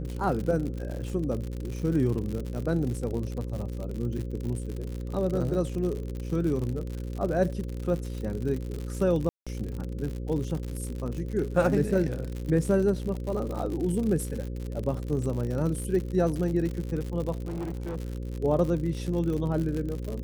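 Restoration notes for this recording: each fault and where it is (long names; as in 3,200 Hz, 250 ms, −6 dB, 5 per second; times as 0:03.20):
mains buzz 60 Hz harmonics 9 −34 dBFS
surface crackle 90 per second −32 dBFS
0:09.29–0:09.47: drop-out 176 ms
0:17.45–0:17.97: clipping −29.5 dBFS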